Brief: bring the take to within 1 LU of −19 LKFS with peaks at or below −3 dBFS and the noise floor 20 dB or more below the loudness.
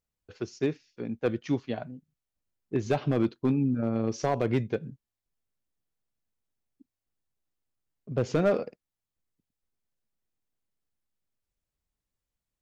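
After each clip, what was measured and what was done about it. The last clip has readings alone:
share of clipped samples 0.3%; peaks flattened at −17.5 dBFS; integrated loudness −29.5 LKFS; sample peak −17.5 dBFS; target loudness −19.0 LKFS
→ clipped peaks rebuilt −17.5 dBFS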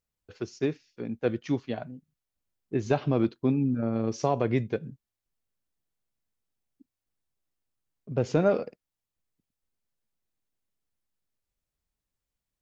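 share of clipped samples 0.0%; integrated loudness −29.0 LKFS; sample peak −11.5 dBFS; target loudness −19.0 LKFS
→ level +10 dB
brickwall limiter −3 dBFS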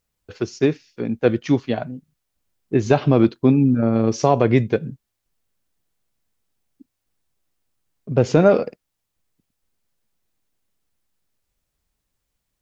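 integrated loudness −19.0 LKFS; sample peak −3.0 dBFS; background noise floor −78 dBFS

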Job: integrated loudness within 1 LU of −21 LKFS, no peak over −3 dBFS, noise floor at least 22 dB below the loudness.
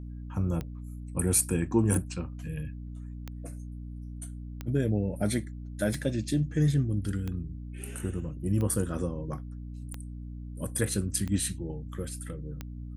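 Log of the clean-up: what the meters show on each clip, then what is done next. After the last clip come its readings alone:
number of clicks 10; mains hum 60 Hz; hum harmonics up to 300 Hz; level of the hum −37 dBFS; integrated loudness −31.0 LKFS; sample peak −10.0 dBFS; target loudness −21.0 LKFS
→ click removal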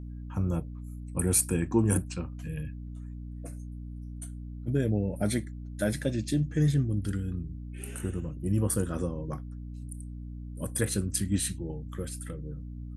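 number of clicks 0; mains hum 60 Hz; hum harmonics up to 300 Hz; level of the hum −37 dBFS
→ hum removal 60 Hz, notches 5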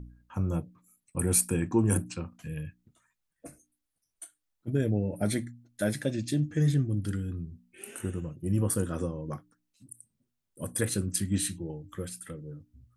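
mains hum none found; integrated loudness −30.5 LKFS; sample peak −10.5 dBFS; target loudness −21.0 LKFS
→ level +9.5 dB
brickwall limiter −3 dBFS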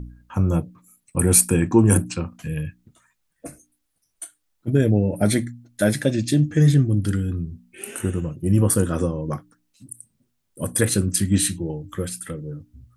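integrated loudness −21.0 LKFS; sample peak −3.0 dBFS; background noise floor −73 dBFS

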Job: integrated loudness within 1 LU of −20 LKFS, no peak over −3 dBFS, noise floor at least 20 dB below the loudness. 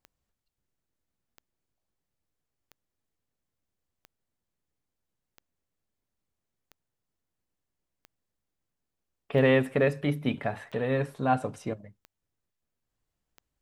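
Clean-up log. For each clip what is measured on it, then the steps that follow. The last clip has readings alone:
number of clicks 11; integrated loudness −27.5 LKFS; sample peak −11.5 dBFS; target loudness −20.0 LKFS
→ click removal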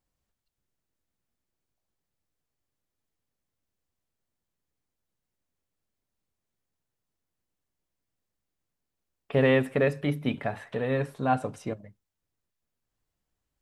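number of clicks 0; integrated loudness −27.5 LKFS; sample peak −11.5 dBFS; target loudness −20.0 LKFS
→ level +7.5 dB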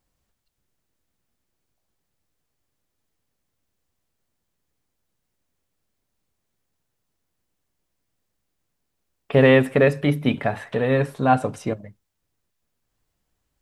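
integrated loudness −20.0 LKFS; sample peak −4.0 dBFS; background noise floor −78 dBFS

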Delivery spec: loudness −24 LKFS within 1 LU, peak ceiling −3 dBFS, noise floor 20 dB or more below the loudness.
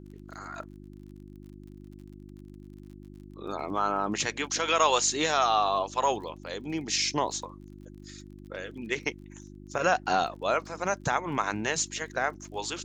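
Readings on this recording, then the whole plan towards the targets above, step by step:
crackle rate 35 per second; mains hum 50 Hz; hum harmonics up to 350 Hz; level of the hum −44 dBFS; integrated loudness −28.5 LKFS; sample peak −10.5 dBFS; target loudness −24.0 LKFS
→ click removal
hum removal 50 Hz, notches 7
level +4.5 dB

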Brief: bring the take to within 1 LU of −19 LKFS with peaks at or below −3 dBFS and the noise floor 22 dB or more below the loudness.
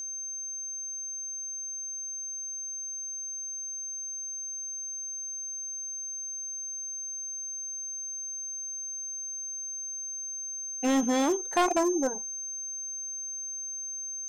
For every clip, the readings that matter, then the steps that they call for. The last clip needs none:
share of clipped samples 0.6%; peaks flattened at −20.5 dBFS; interfering tone 6,300 Hz; level of the tone −34 dBFS; integrated loudness −32.0 LKFS; sample peak −20.5 dBFS; target loudness −19.0 LKFS
→ clipped peaks rebuilt −20.5 dBFS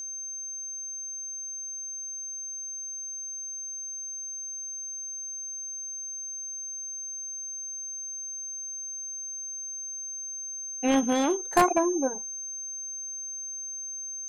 share of clipped samples 0.0%; interfering tone 6,300 Hz; level of the tone −34 dBFS
→ notch filter 6,300 Hz, Q 30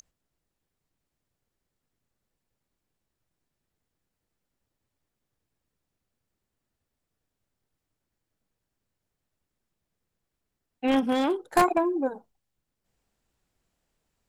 interfering tone none found; integrated loudness −25.5 LKFS; sample peak −11.0 dBFS; target loudness −19.0 LKFS
→ level +6.5 dB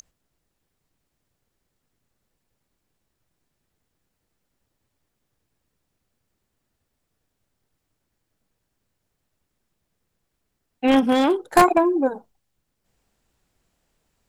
integrated loudness −19.0 LKFS; sample peak −4.5 dBFS; background noise floor −78 dBFS

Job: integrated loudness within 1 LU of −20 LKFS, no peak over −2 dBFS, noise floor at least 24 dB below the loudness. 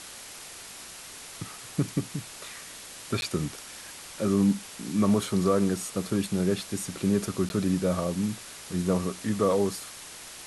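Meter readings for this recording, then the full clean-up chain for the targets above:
number of dropouts 2; longest dropout 11 ms; background noise floor −44 dBFS; target noise floor −52 dBFS; integrated loudness −28.0 LKFS; sample peak −11.0 dBFS; target loudness −20.0 LKFS
→ repair the gap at 0:03.21/0:07.49, 11 ms
noise reduction from a noise print 8 dB
level +8 dB

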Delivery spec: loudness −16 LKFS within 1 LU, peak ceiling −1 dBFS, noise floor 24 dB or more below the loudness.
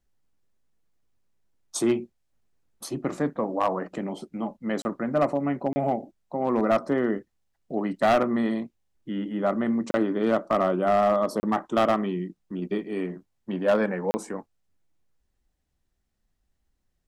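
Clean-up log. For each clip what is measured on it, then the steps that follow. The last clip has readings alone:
share of clipped samples 0.7%; peaks flattened at −15.0 dBFS; number of dropouts 5; longest dropout 30 ms; integrated loudness −26.5 LKFS; sample peak −15.0 dBFS; target loudness −16.0 LKFS
→ clipped peaks rebuilt −15 dBFS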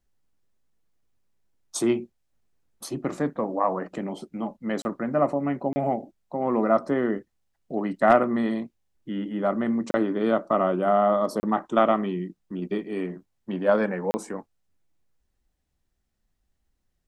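share of clipped samples 0.0%; number of dropouts 5; longest dropout 30 ms
→ repair the gap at 0:04.82/0:05.73/0:09.91/0:11.40/0:14.11, 30 ms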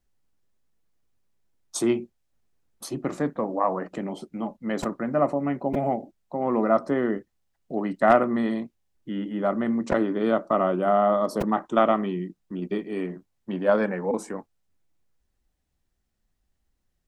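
number of dropouts 0; integrated loudness −26.0 LKFS; sample peak −6.0 dBFS; target loudness −16.0 LKFS
→ level +10 dB
brickwall limiter −1 dBFS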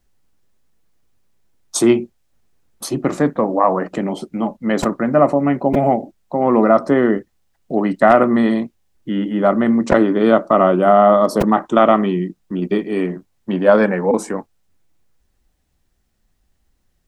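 integrated loudness −16.5 LKFS; sample peak −1.0 dBFS; background noise floor −65 dBFS

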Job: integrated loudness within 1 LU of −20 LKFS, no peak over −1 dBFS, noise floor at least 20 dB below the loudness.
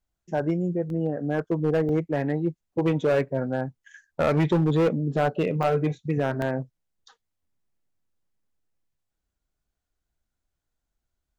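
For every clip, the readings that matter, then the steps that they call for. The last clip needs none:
share of clipped samples 1.6%; peaks flattened at −16.5 dBFS; number of dropouts 4; longest dropout 1.3 ms; integrated loudness −25.5 LKFS; sample peak −16.5 dBFS; target loudness −20.0 LKFS
→ clipped peaks rebuilt −16.5 dBFS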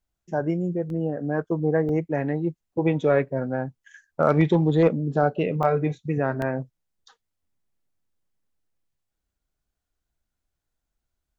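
share of clipped samples 0.0%; number of dropouts 4; longest dropout 1.3 ms
→ repair the gap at 0:00.90/0:01.89/0:05.63/0:06.42, 1.3 ms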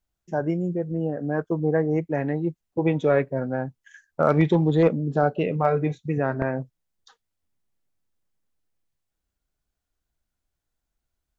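number of dropouts 0; integrated loudness −24.5 LKFS; sample peak −7.5 dBFS; target loudness −20.0 LKFS
→ level +4.5 dB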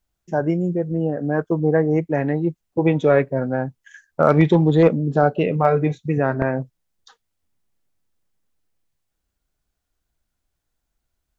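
integrated loudness −20.0 LKFS; sample peak −3.0 dBFS; background noise floor −78 dBFS

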